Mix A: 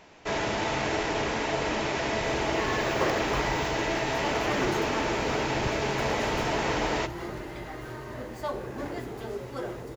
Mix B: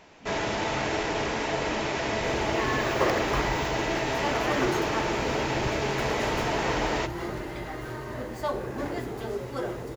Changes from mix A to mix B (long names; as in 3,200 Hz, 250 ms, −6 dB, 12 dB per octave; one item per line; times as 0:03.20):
speech: entry −2.25 s
second sound +3.0 dB